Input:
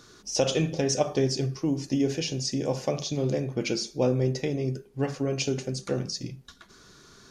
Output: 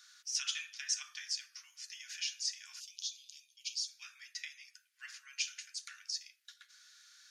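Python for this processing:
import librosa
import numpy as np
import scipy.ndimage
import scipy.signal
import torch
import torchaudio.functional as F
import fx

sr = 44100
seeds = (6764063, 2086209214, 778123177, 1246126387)

y = fx.steep_highpass(x, sr, hz=fx.steps((0.0, 1400.0), (2.79, 2900.0), (3.87, 1500.0)), slope=48)
y = F.gain(torch.from_numpy(y), -4.5).numpy()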